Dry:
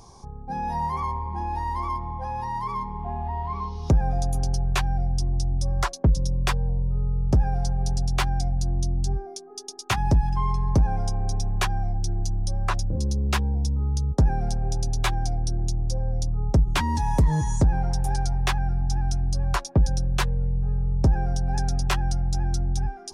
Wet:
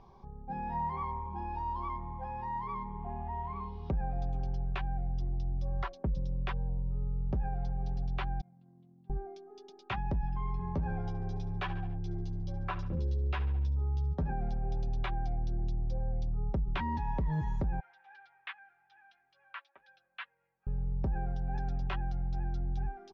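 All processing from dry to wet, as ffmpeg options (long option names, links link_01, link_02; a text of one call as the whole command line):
ffmpeg -i in.wav -filter_complex "[0:a]asettb=1/sr,asplit=3[link_01][link_02][link_03];[link_01]atrim=end=1.264[link_04];[link_02]atrim=start=1.26:end=1.9,asetpts=PTS-STARTPTS,afade=type=in:duration=0.004:curve=qsin,afade=type=out:start_time=0.636:duration=0.004:curve=qsin,asuperstop=centerf=2000:order=12:qfactor=5.6,aemphasis=mode=production:type=50fm[link_05];[link_03]atrim=start=1.896[link_06];[link_04][link_05]acrossfade=duration=0.004:curve1=hsin:curve2=qsin[link_07];[link_07][link_06]acrossfade=duration=0.004:curve1=qsin:curve2=hsin,asettb=1/sr,asplit=3[link_08][link_09][link_10];[link_08]atrim=end=8.414[link_11];[link_09]atrim=start=8.41:end=9.1,asetpts=PTS-STARTPTS,afade=type=in:duration=0.004:curve=qsin,afade=type=out:start_time=0.686:duration=0.004:curve=qsin,agate=range=-33dB:threshold=-12dB:ratio=3:release=100:detection=peak,highpass=frequency=160:width=0.5412,highpass=frequency=160:width=1.3066,equalizer=frequency=200:width_type=q:width=4:gain=7,equalizer=frequency=410:width_type=q:width=4:gain=-7,equalizer=frequency=660:width_type=q:width=4:gain=-7,equalizer=frequency=1100:width_type=q:width=4:gain=4,lowpass=frequency=2900:width=0.5412,lowpass=frequency=2900:width=1.3066[link_12];[link_10]atrim=start=9.096[link_13];[link_11][link_12]acrossfade=duration=0.004:curve1=hsin:curve2=qsin[link_14];[link_14][link_13]acrossfade=duration=0.004:curve1=qsin:curve2=hsin,asettb=1/sr,asplit=3[link_15][link_16][link_17];[link_15]atrim=end=10.584[link_18];[link_16]atrim=start=10.58:end=14.32,asetpts=PTS-STARTPTS,afade=type=in:duration=0.004:curve=qsin,afade=type=out:start_time=3.736:duration=0.004:curve=qsin,asplit=2[link_19][link_20];[link_20]adelay=12,volume=-2.5dB[link_21];[link_19][link_21]amix=inputs=2:normalize=0,atrim=end_sample=164934,aecho=1:1:71|142|213|284:0.126|0.0667|0.0354|0.0187,atrim=end_sample=164934[link_22];[link_17]atrim=start=14.316[link_23];[link_18][link_22]acrossfade=duration=0.004:curve1=hsin:curve2=qsin[link_24];[link_24][link_23]acrossfade=duration=0.004:curve1=qsin:curve2=hsin,asettb=1/sr,asplit=3[link_25][link_26][link_27];[link_25]atrim=end=17.804[link_28];[link_26]atrim=start=17.8:end=20.67,asetpts=PTS-STARTPTS,afade=type=in:duration=0.004:curve=qsin,afade=type=out:start_time=2.866:duration=0.004:curve=qsin,asuperpass=centerf=2200:order=4:qfactor=1,flanger=delay=2:depth=1.9:regen=-50:speed=1.9:shape=sinusoidal[link_29];[link_27]atrim=start=20.666[link_30];[link_28][link_29]acrossfade=duration=0.004:curve1=hsin:curve2=qsin[link_31];[link_31][link_30]acrossfade=duration=0.004:curve1=qsin:curve2=hsin,lowpass=frequency=3200:width=0.5412,lowpass=frequency=3200:width=1.3066,aecho=1:1:5.2:0.31,alimiter=limit=-17.5dB:level=0:latency=1,volume=-8dB" out.wav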